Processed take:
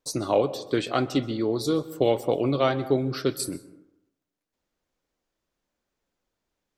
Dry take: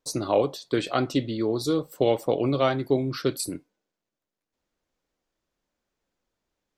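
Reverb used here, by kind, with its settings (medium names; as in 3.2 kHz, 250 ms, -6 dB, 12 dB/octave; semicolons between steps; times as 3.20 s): plate-style reverb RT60 0.87 s, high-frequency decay 0.4×, pre-delay 115 ms, DRR 16.5 dB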